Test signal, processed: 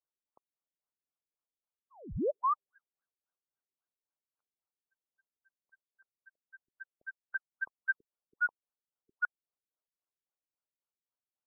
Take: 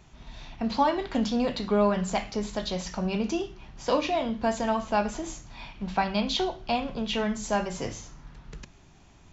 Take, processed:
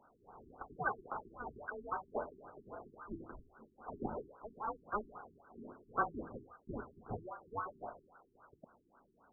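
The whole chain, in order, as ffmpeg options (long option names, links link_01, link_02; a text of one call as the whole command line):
ffmpeg -i in.wav -af "volume=20dB,asoftclip=hard,volume=-20dB,lowpass=frequency=2300:width_type=q:width=0.5098,lowpass=frequency=2300:width_type=q:width=0.6013,lowpass=frequency=2300:width_type=q:width=0.9,lowpass=frequency=2300:width_type=q:width=2.563,afreqshift=-2700,afftfilt=real='re*lt(b*sr/1024,390*pow(1600/390,0.5+0.5*sin(2*PI*3.7*pts/sr)))':imag='im*lt(b*sr/1024,390*pow(1600/390,0.5+0.5*sin(2*PI*3.7*pts/sr)))':win_size=1024:overlap=0.75,volume=3.5dB" out.wav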